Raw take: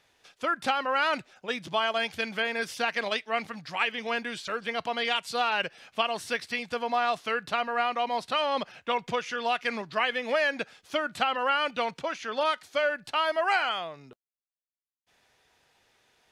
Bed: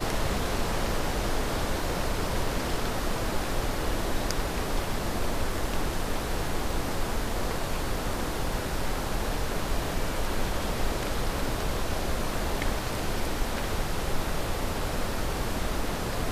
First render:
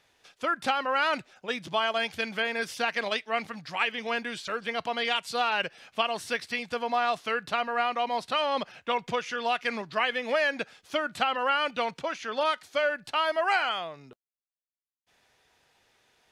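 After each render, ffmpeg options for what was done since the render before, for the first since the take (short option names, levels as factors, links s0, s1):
-af anull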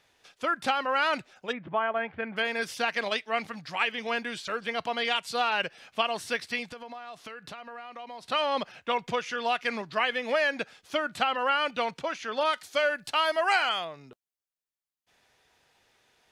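-filter_complex "[0:a]asplit=3[s0][s1][s2];[s0]afade=t=out:st=1.51:d=0.02[s3];[s1]lowpass=f=2000:w=0.5412,lowpass=f=2000:w=1.3066,afade=t=in:st=1.51:d=0.02,afade=t=out:st=2.36:d=0.02[s4];[s2]afade=t=in:st=2.36:d=0.02[s5];[s3][s4][s5]amix=inputs=3:normalize=0,asettb=1/sr,asplit=3[s6][s7][s8];[s6]atrim=end=6.714[s9];[s7]atrim=start=6.71:end=8.26,asetpts=PTS-STARTPTS,afade=t=in:d=0.004:c=qsin,afade=t=out:st=1.546:d=0.004:c=qsin,acompressor=threshold=0.0112:ratio=6:attack=3.2:release=140:knee=1:detection=peak[s10];[s8]atrim=start=8.256[s11];[s9][s10]acrossfade=d=0.004:c1=hsin:c2=qsin[s12];[s12][s11]acrossfade=d=0.004:c1=qsin:c2=hsin,asettb=1/sr,asplit=3[s13][s14][s15];[s13]atrim=end=12.534[s16];[s14]atrim=start=12.53:end=13.85,asetpts=PTS-STARTPTS,afade=t=in:d=0.004:c=qsin,afade=t=out:st=1.316:d=0.004:c=qsin,highshelf=f=4000:g=8[s17];[s15]atrim=start=13.846[s18];[s16][s17]acrossfade=d=0.004:c1=hsin:c2=qsin[s19];[s19][s18]acrossfade=d=0.004:c1=qsin:c2=hsin"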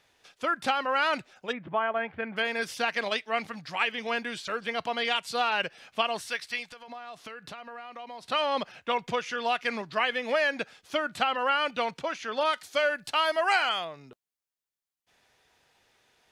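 -filter_complex "[0:a]asettb=1/sr,asplit=3[s0][s1][s2];[s0]atrim=end=6.214[s3];[s1]atrim=start=6.21:end=6.88,asetpts=PTS-STARTPTS,afade=t=in:d=0.004:c=qsin,afade=t=out:st=0.666:d=0.004:c=qsin,equalizer=f=180:w=0.31:g=-11.5[s4];[s2]atrim=start=6.876[s5];[s3][s4]acrossfade=d=0.004:c1=hsin:c2=qsin[s6];[s6][s5]acrossfade=d=0.004:c1=qsin:c2=hsin"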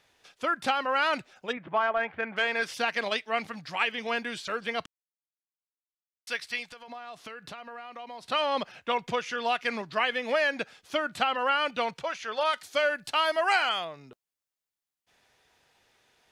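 -filter_complex "[0:a]asettb=1/sr,asplit=3[s0][s1][s2];[s0]atrim=end=1.574[s3];[s1]atrim=start=1.57:end=2.74,asetpts=PTS-STARTPTS,afade=t=in:d=0.004:c=qsin,afade=t=out:st=1.166:d=0.004:c=qsin,asplit=2[s4][s5];[s5]highpass=f=720:p=1,volume=2.82,asoftclip=type=tanh:threshold=0.178[s6];[s4][s6]amix=inputs=2:normalize=0,lowpass=f=3000:p=1,volume=0.501[s7];[s2]atrim=start=2.736[s8];[s3][s7]acrossfade=d=0.004:c1=hsin:c2=qsin[s9];[s9][s8]acrossfade=d=0.004:c1=qsin:c2=hsin,asettb=1/sr,asplit=3[s10][s11][s12];[s10]atrim=end=11.934[s13];[s11]atrim=start=11.93:end=12.54,asetpts=PTS-STARTPTS,afade=t=in:d=0.004:c=qsin,afade=t=out:st=0.606:d=0.004:c=qsin,equalizer=f=270:t=o:w=0.61:g=-11.5[s14];[s12]atrim=start=12.536[s15];[s13][s14]acrossfade=d=0.004:c1=hsin:c2=qsin[s16];[s16][s15]acrossfade=d=0.004:c1=qsin:c2=hsin,asplit=3[s17][s18][s19];[s17]atrim=end=4.86,asetpts=PTS-STARTPTS,afade=t=out:st=4.856:d=0.004:c=hsin[s20];[s18]atrim=start=4.86:end=6.27,asetpts=PTS-STARTPTS,volume=0[s21];[s19]atrim=start=6.27,asetpts=PTS-STARTPTS,afade=t=in:d=0.004:c=hsin[s22];[s20][s21][s22]concat=n=3:v=0:a=1"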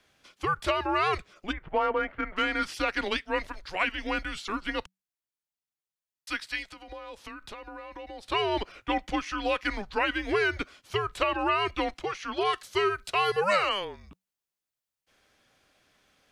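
-af "afreqshift=-190"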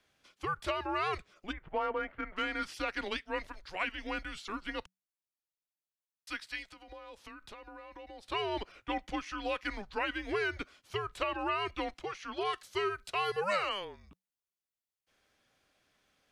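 -af "volume=0.447"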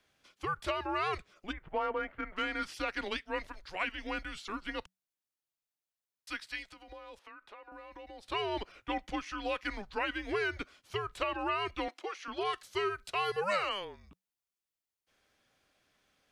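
-filter_complex "[0:a]asettb=1/sr,asplit=3[s0][s1][s2];[s0]atrim=end=7.194[s3];[s1]atrim=start=7.19:end=7.72,asetpts=PTS-STARTPTS,afade=t=in:d=0.004:c=qsin,afade=t=out:st=0.526:d=0.004:c=qsin,acrossover=split=360 2800:gain=0.1 1 0.2[s4][s5][s6];[s4][s5][s6]amix=inputs=3:normalize=0[s7];[s2]atrim=start=7.716[s8];[s3][s7]acrossfade=d=0.004:c1=hsin:c2=qsin[s9];[s9][s8]acrossfade=d=0.004:c1=qsin:c2=hsin,asettb=1/sr,asplit=3[s10][s11][s12];[s10]atrim=end=11.884[s13];[s11]atrim=start=11.88:end=12.28,asetpts=PTS-STARTPTS,afade=t=in:d=0.004:c=qsin,afade=t=out:st=0.396:d=0.004:c=qsin,highpass=f=280:w=0.5412,highpass=f=280:w=1.3066[s14];[s12]atrim=start=12.276[s15];[s13][s14]acrossfade=d=0.004:c1=hsin:c2=qsin[s16];[s16][s15]acrossfade=d=0.004:c1=qsin:c2=hsin"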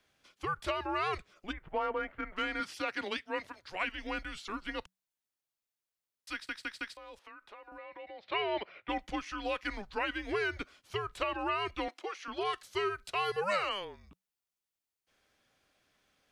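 -filter_complex "[0:a]asettb=1/sr,asplit=3[s0][s1][s2];[s0]atrim=end=2.604[s3];[s1]atrim=start=2.6:end=3.72,asetpts=PTS-STARTPTS,afade=t=in:d=0.004:c=qsin,afade=t=out:st=1.116:d=0.004:c=qsin,highpass=f=81:w=0.5412,highpass=f=81:w=1.3066[s4];[s2]atrim=start=3.716[s5];[s3][s4]acrossfade=d=0.004:c1=hsin:c2=qsin[s6];[s6][s5]acrossfade=d=0.004:c1=qsin:c2=hsin,asettb=1/sr,asplit=3[s7][s8][s9];[s7]atrim=end=7.784[s10];[s8]atrim=start=7.78:end=8.89,asetpts=PTS-STARTPTS,afade=t=in:d=0.004:c=qsin,afade=t=out:st=1.106:d=0.004:c=qsin,highpass=150,equalizer=f=270:t=q:w=4:g=-7,equalizer=f=600:t=q:w=4:g=6,equalizer=f=2100:t=q:w=4:g=8,lowpass=f=4000:w=0.5412,lowpass=f=4000:w=1.3066[s11];[s9]atrim=start=8.886[s12];[s10][s11]acrossfade=d=0.004:c1=hsin:c2=qsin[s13];[s13][s12]acrossfade=d=0.004:c1=qsin:c2=hsin,asplit=5[s14][s15][s16][s17][s18];[s14]atrim=end=6.492[s19];[s15]atrim=start=6.328:end=6.492[s20];[s16]atrim=start=6.328:end=6.492[s21];[s17]atrim=start=6.328:end=6.492[s22];[s18]atrim=start=6.968[s23];[s19][s20]acrossfade=d=0.004:c1=hsin:c2=hsin[s24];[s24][s21]acrossfade=d=0.004:c1=hsin:c2=hsin[s25];[s25][s22]acrossfade=d=0.004:c1=hsin:c2=hsin[s26];[s26][s23]acrossfade=d=0.004:c1=hsin:c2=hsin"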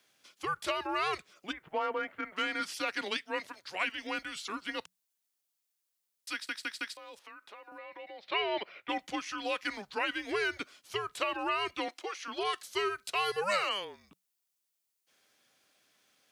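-af "highpass=160,highshelf=f=3700:g=9.5"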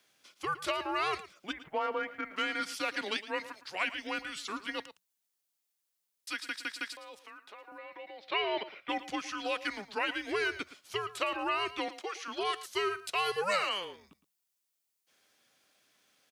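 -af "aecho=1:1:112:0.178"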